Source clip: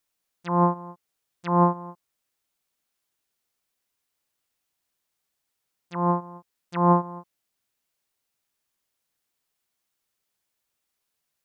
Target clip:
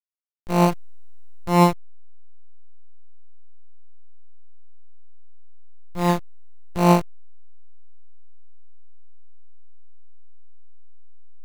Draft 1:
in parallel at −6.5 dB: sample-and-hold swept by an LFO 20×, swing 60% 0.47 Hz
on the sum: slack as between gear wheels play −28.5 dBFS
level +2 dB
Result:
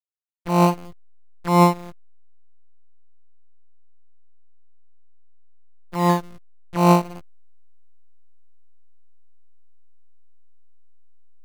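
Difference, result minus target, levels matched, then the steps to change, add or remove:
slack as between gear wheels: distortion −11 dB
change: slack as between gear wheels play −17 dBFS

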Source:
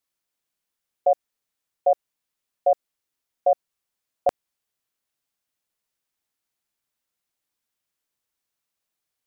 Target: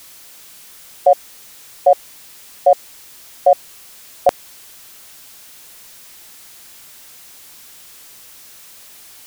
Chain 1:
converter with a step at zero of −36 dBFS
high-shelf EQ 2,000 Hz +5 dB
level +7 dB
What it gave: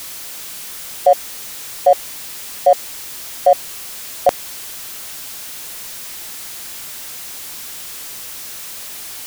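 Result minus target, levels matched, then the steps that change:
converter with a step at zero: distortion +10 dB
change: converter with a step at zero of −46.5 dBFS

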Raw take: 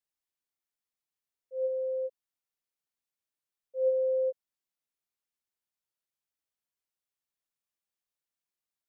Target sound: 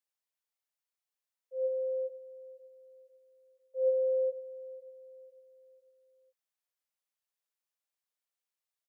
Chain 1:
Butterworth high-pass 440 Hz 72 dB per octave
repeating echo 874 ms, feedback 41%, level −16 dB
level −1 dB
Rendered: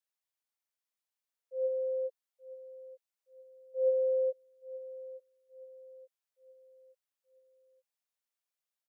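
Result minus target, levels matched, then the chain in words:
echo 374 ms late
Butterworth high-pass 440 Hz 72 dB per octave
repeating echo 500 ms, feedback 41%, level −16 dB
level −1 dB

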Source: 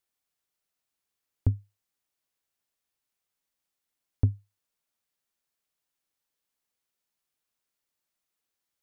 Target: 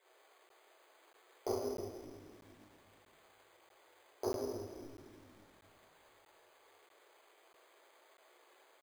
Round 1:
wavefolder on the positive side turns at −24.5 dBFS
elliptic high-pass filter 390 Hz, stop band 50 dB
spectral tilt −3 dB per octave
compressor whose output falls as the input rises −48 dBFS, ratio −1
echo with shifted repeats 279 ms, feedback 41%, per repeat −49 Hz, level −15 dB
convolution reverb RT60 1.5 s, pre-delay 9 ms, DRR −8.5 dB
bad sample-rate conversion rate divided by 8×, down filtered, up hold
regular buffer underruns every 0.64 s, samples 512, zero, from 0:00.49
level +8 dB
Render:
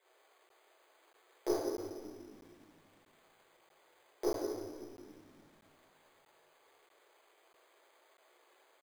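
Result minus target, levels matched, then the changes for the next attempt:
wavefolder on the positive side: distortion +15 dB
change: wavefolder on the positive side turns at −16.5 dBFS

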